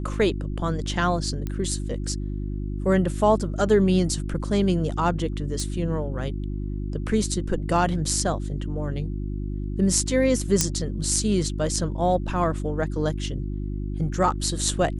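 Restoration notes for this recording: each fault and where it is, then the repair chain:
hum 50 Hz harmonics 7 -29 dBFS
1.47 pop -17 dBFS
5.6 pop
10.61 pop -4 dBFS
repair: de-click; de-hum 50 Hz, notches 7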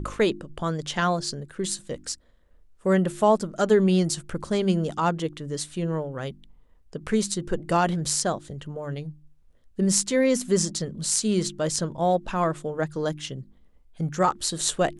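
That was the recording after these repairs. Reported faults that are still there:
none

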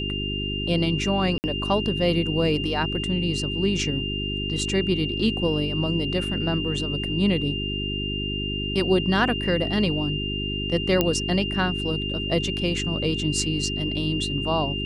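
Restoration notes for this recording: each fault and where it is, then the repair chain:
hum 50 Hz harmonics 8 -30 dBFS
tone 2800 Hz -29 dBFS
1.38–1.44 gap 59 ms
11.01 pop -6 dBFS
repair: de-click; de-hum 50 Hz, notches 8; notch 2800 Hz, Q 30; interpolate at 1.38, 59 ms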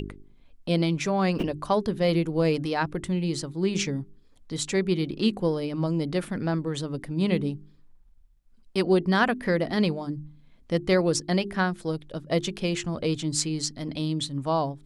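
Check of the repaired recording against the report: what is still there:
none

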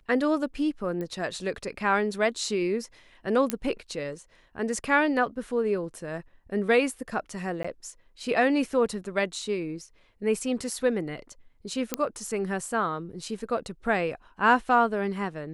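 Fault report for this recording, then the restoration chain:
1.01 pop -23 dBFS
3.5 pop -9 dBFS
7.63–7.64 gap 15 ms
11.94 pop -8 dBFS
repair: de-click; interpolate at 7.63, 15 ms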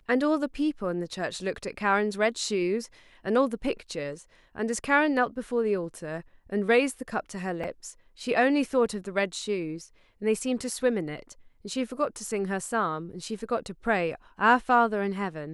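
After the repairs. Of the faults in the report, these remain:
none

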